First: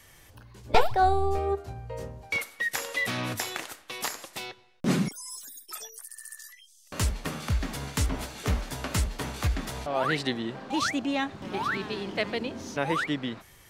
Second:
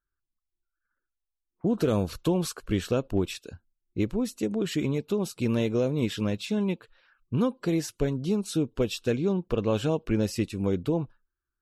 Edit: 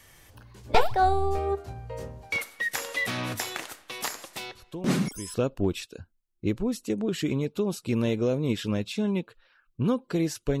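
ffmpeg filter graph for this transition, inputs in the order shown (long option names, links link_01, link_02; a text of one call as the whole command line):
ffmpeg -i cue0.wav -i cue1.wav -filter_complex "[1:a]asplit=2[link_01][link_02];[0:a]apad=whole_dur=10.6,atrim=end=10.6,atrim=end=5.342[link_03];[link_02]atrim=start=2.868:end=8.13[link_04];[link_01]atrim=start=2.08:end=2.87,asetpts=PTS-STARTPTS,volume=-12.5dB,afade=type=in:duration=0.004:curve=hsin,afade=type=out:start_time=0.786:duration=0.004:curve=hsin,adelay=4550[link_05];[link_03][link_04]acrossfade=duration=0.004:curve1=hsin:curve2=hsin[link_06];[link_06][link_05]amix=inputs=2:normalize=0" out.wav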